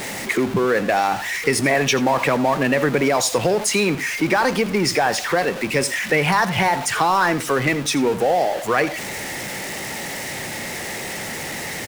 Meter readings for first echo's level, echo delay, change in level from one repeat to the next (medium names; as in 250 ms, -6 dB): -16.0 dB, 84 ms, no regular repeats